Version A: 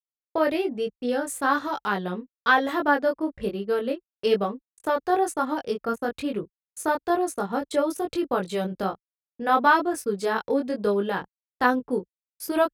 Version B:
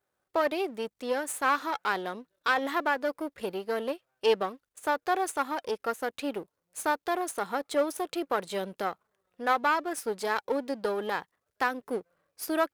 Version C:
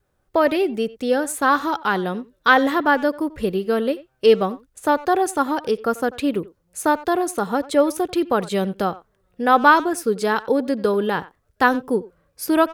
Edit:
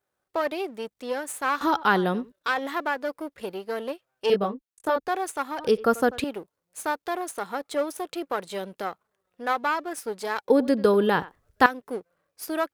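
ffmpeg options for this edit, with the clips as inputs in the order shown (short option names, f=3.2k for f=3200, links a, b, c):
-filter_complex "[2:a]asplit=3[a][b][c];[1:a]asplit=5[d][e][f][g][h];[d]atrim=end=1.612[i];[a]atrim=start=1.608:end=2.322[j];[e]atrim=start=2.318:end=4.302[k];[0:a]atrim=start=4.298:end=5.082[l];[f]atrim=start=5.078:end=5.592[m];[b]atrim=start=5.588:end=6.242[n];[g]atrim=start=6.238:end=10.502[o];[c]atrim=start=10.498:end=11.662[p];[h]atrim=start=11.658[q];[i][j]acrossfade=d=0.004:c1=hsin:c2=hsin[r];[r][k]acrossfade=d=0.004:c1=hsin:c2=hsin[s];[s][l]acrossfade=d=0.004:c1=hsin:c2=hsin[t];[t][m]acrossfade=d=0.004:c1=hsin:c2=hsin[u];[u][n]acrossfade=d=0.004:c1=hsin:c2=hsin[v];[v][o]acrossfade=d=0.004:c1=hsin:c2=hsin[w];[w][p]acrossfade=d=0.004:c1=hsin:c2=hsin[x];[x][q]acrossfade=d=0.004:c1=hsin:c2=hsin"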